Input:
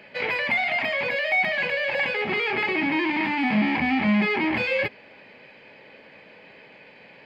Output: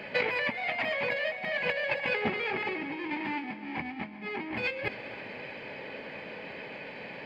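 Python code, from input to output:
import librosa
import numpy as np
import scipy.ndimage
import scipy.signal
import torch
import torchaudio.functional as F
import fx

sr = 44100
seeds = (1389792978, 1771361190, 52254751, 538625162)

y = fx.high_shelf(x, sr, hz=2300.0, db=-4.0)
y = fx.over_compress(y, sr, threshold_db=-31.0, ratio=-0.5)
y = fx.echo_heads(y, sr, ms=131, heads='first and second', feedback_pct=73, wet_db=-20)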